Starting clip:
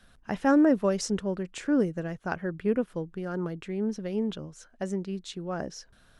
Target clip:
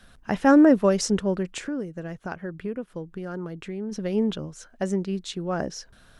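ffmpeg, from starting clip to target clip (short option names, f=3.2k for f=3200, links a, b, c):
-filter_complex "[0:a]asplit=3[a][b][c];[a]afade=t=out:st=1.58:d=0.02[d];[b]acompressor=threshold=-39dB:ratio=2.5,afade=t=in:st=1.58:d=0.02,afade=t=out:st=3.91:d=0.02[e];[c]afade=t=in:st=3.91:d=0.02[f];[d][e][f]amix=inputs=3:normalize=0,volume=5.5dB"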